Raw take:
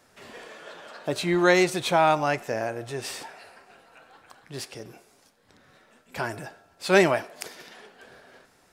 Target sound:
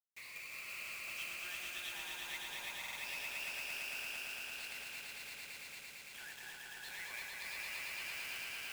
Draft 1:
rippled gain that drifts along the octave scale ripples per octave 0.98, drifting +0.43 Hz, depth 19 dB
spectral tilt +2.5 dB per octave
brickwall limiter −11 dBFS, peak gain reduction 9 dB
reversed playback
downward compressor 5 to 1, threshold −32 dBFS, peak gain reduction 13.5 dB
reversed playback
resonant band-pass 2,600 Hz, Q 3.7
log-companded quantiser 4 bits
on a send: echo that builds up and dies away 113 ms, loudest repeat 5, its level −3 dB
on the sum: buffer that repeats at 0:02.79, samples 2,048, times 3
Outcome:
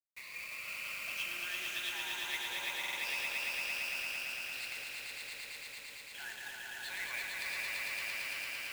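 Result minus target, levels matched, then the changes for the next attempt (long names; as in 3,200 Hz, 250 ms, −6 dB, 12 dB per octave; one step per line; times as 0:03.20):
downward compressor: peak gain reduction −7 dB
change: downward compressor 5 to 1, threshold −40.5 dBFS, peak gain reduction 20.5 dB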